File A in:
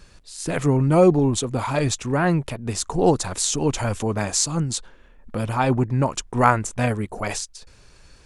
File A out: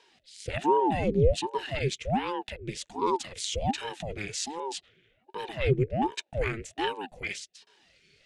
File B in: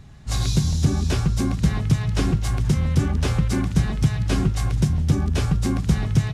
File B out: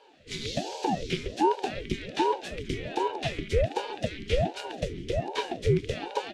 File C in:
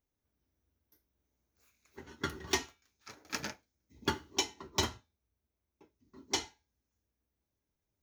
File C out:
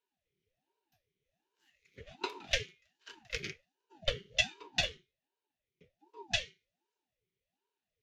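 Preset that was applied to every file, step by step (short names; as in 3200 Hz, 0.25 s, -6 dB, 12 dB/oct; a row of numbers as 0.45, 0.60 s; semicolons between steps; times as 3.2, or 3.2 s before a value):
vowel filter i; high shelf 2300 Hz +11.5 dB; ring modulator with a swept carrier 400 Hz, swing 75%, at 1.3 Hz; normalise peaks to -12 dBFS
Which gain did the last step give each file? +5.5, +7.0, +11.5 dB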